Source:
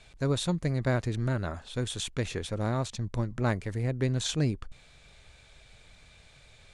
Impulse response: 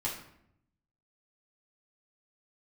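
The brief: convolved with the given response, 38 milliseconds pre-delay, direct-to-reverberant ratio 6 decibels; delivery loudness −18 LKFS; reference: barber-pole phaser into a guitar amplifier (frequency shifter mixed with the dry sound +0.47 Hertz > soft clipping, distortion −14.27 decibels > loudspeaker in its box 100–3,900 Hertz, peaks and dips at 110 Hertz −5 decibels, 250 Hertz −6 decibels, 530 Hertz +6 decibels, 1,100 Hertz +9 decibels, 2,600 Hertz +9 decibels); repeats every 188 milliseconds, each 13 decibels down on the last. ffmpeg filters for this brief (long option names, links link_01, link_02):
-filter_complex "[0:a]aecho=1:1:188|376|564:0.224|0.0493|0.0108,asplit=2[link_01][link_02];[1:a]atrim=start_sample=2205,adelay=38[link_03];[link_02][link_03]afir=irnorm=-1:irlink=0,volume=-10dB[link_04];[link_01][link_04]amix=inputs=2:normalize=0,asplit=2[link_05][link_06];[link_06]afreqshift=0.47[link_07];[link_05][link_07]amix=inputs=2:normalize=1,asoftclip=threshold=-25dB,highpass=100,equalizer=frequency=110:width_type=q:width=4:gain=-5,equalizer=frequency=250:width_type=q:width=4:gain=-6,equalizer=frequency=530:width_type=q:width=4:gain=6,equalizer=frequency=1100:width_type=q:width=4:gain=9,equalizer=frequency=2600:width_type=q:width=4:gain=9,lowpass=frequency=3900:width=0.5412,lowpass=frequency=3900:width=1.3066,volume=16.5dB"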